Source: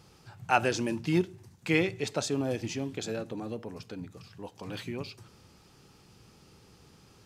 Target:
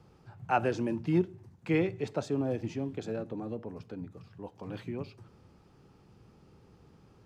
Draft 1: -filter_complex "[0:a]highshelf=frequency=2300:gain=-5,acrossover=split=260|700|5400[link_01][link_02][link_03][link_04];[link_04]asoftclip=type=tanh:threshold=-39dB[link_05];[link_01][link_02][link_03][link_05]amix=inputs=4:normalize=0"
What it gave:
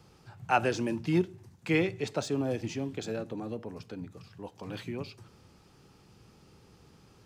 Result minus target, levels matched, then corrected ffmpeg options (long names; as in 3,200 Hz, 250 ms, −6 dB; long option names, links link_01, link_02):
4,000 Hz band +7.0 dB
-filter_complex "[0:a]highshelf=frequency=2300:gain=-16.5,acrossover=split=260|700|5400[link_01][link_02][link_03][link_04];[link_04]asoftclip=type=tanh:threshold=-39dB[link_05];[link_01][link_02][link_03][link_05]amix=inputs=4:normalize=0"